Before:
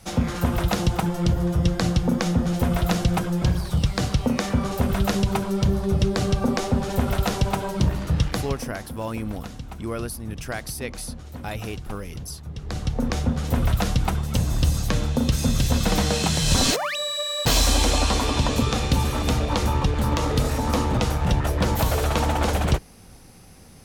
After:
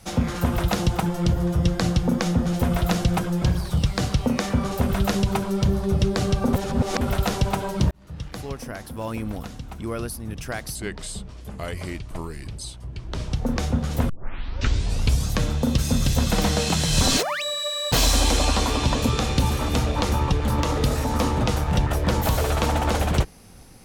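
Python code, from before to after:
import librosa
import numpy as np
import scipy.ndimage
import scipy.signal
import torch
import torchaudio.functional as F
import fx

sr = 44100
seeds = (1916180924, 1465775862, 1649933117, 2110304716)

y = fx.edit(x, sr, fx.reverse_span(start_s=6.53, length_s=0.48),
    fx.fade_in_span(start_s=7.91, length_s=1.22),
    fx.speed_span(start_s=10.75, length_s=2.11, speed=0.82),
    fx.tape_start(start_s=13.63, length_s=1.19), tone=tone)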